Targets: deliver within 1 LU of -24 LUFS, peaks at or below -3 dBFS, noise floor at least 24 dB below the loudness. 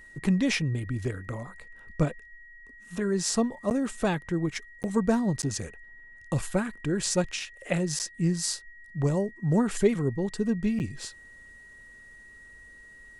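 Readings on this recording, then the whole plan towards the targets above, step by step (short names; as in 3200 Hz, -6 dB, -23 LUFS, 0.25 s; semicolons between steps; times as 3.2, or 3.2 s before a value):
dropouts 5; longest dropout 9.1 ms; steady tone 1900 Hz; tone level -48 dBFS; loudness -28.5 LUFS; peak -10.5 dBFS; loudness target -24.0 LUFS
-> interpolate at 3.7/4.83/5.42/7.99/10.79, 9.1 ms; notch 1900 Hz, Q 30; gain +4.5 dB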